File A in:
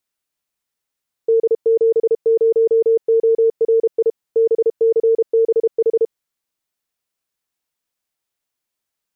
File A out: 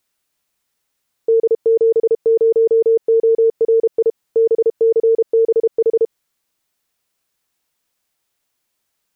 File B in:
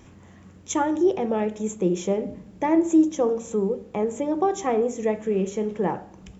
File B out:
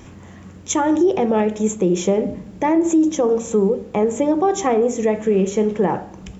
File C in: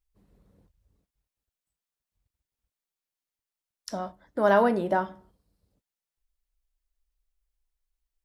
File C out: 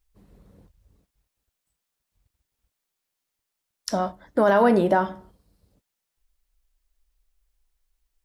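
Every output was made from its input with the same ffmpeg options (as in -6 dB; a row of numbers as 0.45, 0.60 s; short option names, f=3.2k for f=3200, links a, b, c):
-af "alimiter=limit=-17.5dB:level=0:latency=1:release=77,volume=8.5dB"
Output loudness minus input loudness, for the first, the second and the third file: +1.5, +5.5, +3.5 LU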